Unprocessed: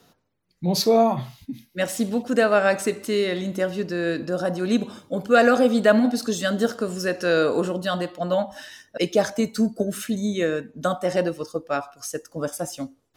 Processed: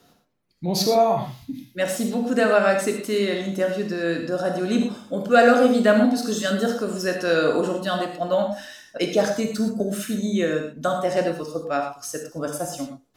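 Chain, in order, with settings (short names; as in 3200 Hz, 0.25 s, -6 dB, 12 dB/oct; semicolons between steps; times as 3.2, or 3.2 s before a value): non-linear reverb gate 0.14 s flat, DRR 3 dB; gain -1 dB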